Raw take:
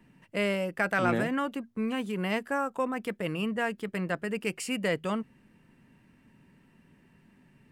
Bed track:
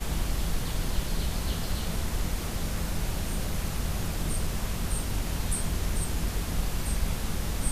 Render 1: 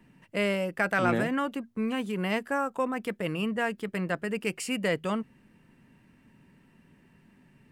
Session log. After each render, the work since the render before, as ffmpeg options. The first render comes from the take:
-af "volume=1.12"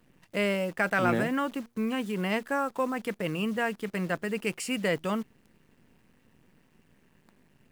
-af "acrusher=bits=9:dc=4:mix=0:aa=0.000001"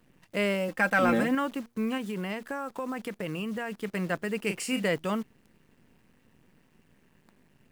-filter_complex "[0:a]asettb=1/sr,asplit=3[s0][s1][s2];[s0]atrim=end=0.684[s3];[s1]atrim=start=0.68:end=1.35,asetpts=PTS-STARTPTS,afade=t=in:d=0.004:c=qsin,afade=t=out:st=0.666:d=0.004:c=qsin,aecho=1:1:3.8:0.65,atrim=end_sample=29547[s4];[s2]atrim=start=1.346[s5];[s3][s4]acrossfade=d=0.004:c1=hsin:c2=qsin[s6];[s6][s5]acrossfade=d=0.004:c1=qsin:c2=hsin,asettb=1/sr,asplit=3[s7][s8][s9];[s7]atrim=end=1.974[s10];[s8]atrim=start=1.97:end=3.72,asetpts=PTS-STARTPTS,afade=t=in:d=0.004:c=qsin,afade=t=out:st=1.746:d=0.004:c=qsin,acompressor=threshold=0.0355:ratio=6:attack=3.2:release=140:knee=1:detection=peak[s11];[s9]atrim=start=3.716[s12];[s10][s11]acrossfade=d=0.004:c1=hsin:c2=qsin[s13];[s13][s12]acrossfade=d=0.004:c1=qsin:c2=hsin,asettb=1/sr,asplit=3[s14][s15][s16];[s14]atrim=end=4.464[s17];[s15]atrim=start=4.46:end=4.87,asetpts=PTS-STARTPTS,afade=t=in:d=0.004:c=qsin,afade=t=out:st=0.406:d=0.004:c=qsin,asplit=2[s18][s19];[s19]adelay=35,volume=0.447[s20];[s18][s20]amix=inputs=2:normalize=0,atrim=end_sample=18081[s21];[s16]atrim=start=4.866[s22];[s17][s21]acrossfade=d=0.004:c1=hsin:c2=qsin[s23];[s23][s22]acrossfade=d=0.004:c1=qsin:c2=hsin"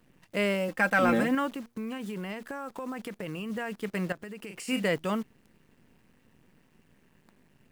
-filter_complex "[0:a]asettb=1/sr,asplit=3[s0][s1][s2];[s0]atrim=end=1.504[s3];[s1]atrim=start=1.5:end=3.5,asetpts=PTS-STARTPTS,afade=t=in:d=0.004:c=qsin,afade=t=out:st=1.996:d=0.004:c=qsin,acompressor=threshold=0.0251:ratio=4:attack=3.2:release=140:knee=1:detection=peak[s4];[s2]atrim=start=3.496[s5];[s3][s4]acrossfade=d=0.004:c1=hsin:c2=qsin[s6];[s6][s5]acrossfade=d=0.004:c1=qsin:c2=hsin,asettb=1/sr,asplit=3[s7][s8][s9];[s7]atrim=end=4.124[s10];[s8]atrim=start=4.12:end=4.68,asetpts=PTS-STARTPTS,afade=t=in:d=0.004:c=qsin,afade=t=out:st=0.556:d=0.004:c=qsin,acompressor=threshold=0.0141:ratio=12:attack=3.2:release=140:knee=1:detection=peak[s11];[s9]atrim=start=4.676[s12];[s10][s11]acrossfade=d=0.004:c1=hsin:c2=qsin[s13];[s13][s12]acrossfade=d=0.004:c1=qsin:c2=hsin"

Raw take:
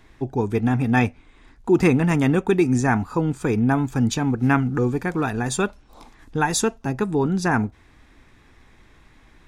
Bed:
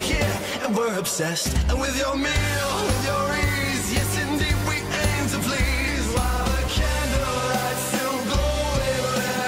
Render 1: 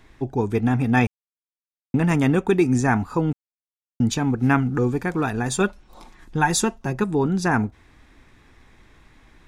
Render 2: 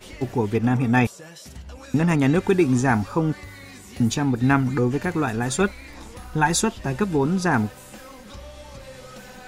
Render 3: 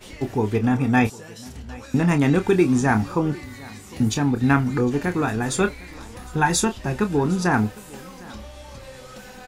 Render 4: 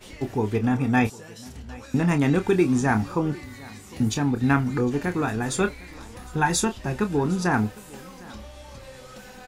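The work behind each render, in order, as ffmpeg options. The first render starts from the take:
-filter_complex "[0:a]asettb=1/sr,asplit=3[s0][s1][s2];[s0]atrim=end=5.604[s3];[s1]atrim=start=5.6:end=7.04,asetpts=PTS-STARTPTS,afade=t=in:d=0.004:c=qsin,afade=t=out:st=1.436:d=0.004:c=qsin,aecho=1:1:5.5:0.47,atrim=end_sample=63504[s4];[s2]atrim=start=7.036[s5];[s3][s4]acrossfade=d=0.004:c1=hsin:c2=qsin[s6];[s6][s5]acrossfade=d=0.004:c1=qsin:c2=hsin,asplit=5[s7][s8][s9][s10][s11];[s7]atrim=end=1.07,asetpts=PTS-STARTPTS,afade=t=out:st=1.066:d=0.004:c=hsin[s12];[s8]atrim=start=1.07:end=1.94,asetpts=PTS-STARTPTS,volume=0[s13];[s9]atrim=start=1.94:end=3.33,asetpts=PTS-STARTPTS,afade=t=in:d=0.004:c=hsin,afade=t=out:st=1.386:d=0.004:c=hsin[s14];[s10]atrim=start=3.33:end=4,asetpts=PTS-STARTPTS,volume=0[s15];[s11]atrim=start=4,asetpts=PTS-STARTPTS,afade=t=in:d=0.004:c=hsin[s16];[s12][s13][s14][s15][s16]concat=n=5:v=0:a=1"
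-filter_complex "[1:a]volume=0.126[s0];[0:a][s0]amix=inputs=2:normalize=0"
-filter_complex "[0:a]asplit=2[s0][s1];[s1]adelay=28,volume=0.335[s2];[s0][s2]amix=inputs=2:normalize=0,aecho=1:1:756:0.0794"
-af "volume=0.75"

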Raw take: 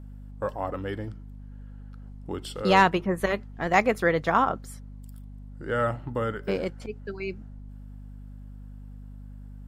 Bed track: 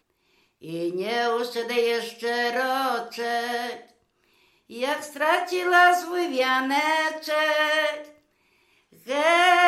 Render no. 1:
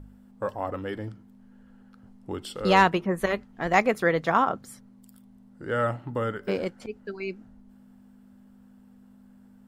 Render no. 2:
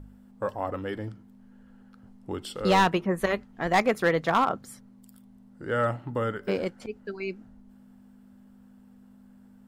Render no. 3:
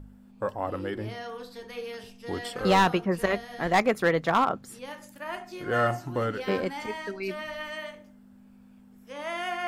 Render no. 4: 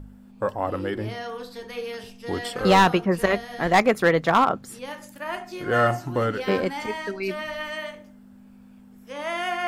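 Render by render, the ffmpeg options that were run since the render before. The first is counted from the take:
-af "bandreject=f=50:t=h:w=4,bandreject=f=100:t=h:w=4,bandreject=f=150:t=h:w=4"
-af "asoftclip=type=hard:threshold=0.188"
-filter_complex "[1:a]volume=0.188[s0];[0:a][s0]amix=inputs=2:normalize=0"
-af "volume=1.68"

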